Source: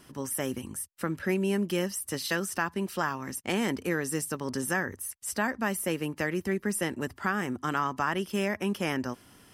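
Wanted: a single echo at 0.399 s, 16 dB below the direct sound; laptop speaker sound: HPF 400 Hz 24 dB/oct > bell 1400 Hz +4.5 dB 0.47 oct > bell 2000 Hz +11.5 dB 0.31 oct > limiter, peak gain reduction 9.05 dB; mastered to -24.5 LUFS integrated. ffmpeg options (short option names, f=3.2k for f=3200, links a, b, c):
-af "highpass=f=400:w=0.5412,highpass=f=400:w=1.3066,equalizer=f=1.4k:t=o:w=0.47:g=4.5,equalizer=f=2k:t=o:w=0.31:g=11.5,aecho=1:1:399:0.158,volume=7dB,alimiter=limit=-12.5dB:level=0:latency=1"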